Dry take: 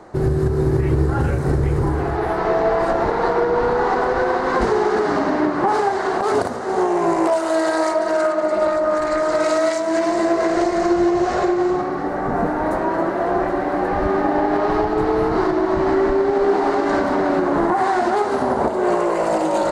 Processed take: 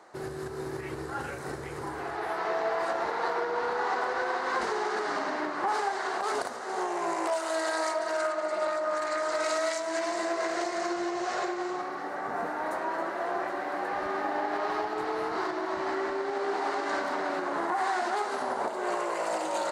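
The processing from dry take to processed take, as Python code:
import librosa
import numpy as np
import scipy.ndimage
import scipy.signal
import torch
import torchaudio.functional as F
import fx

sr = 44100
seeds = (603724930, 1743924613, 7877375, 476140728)

y = fx.highpass(x, sr, hz=1400.0, slope=6)
y = y * 10.0 ** (-4.0 / 20.0)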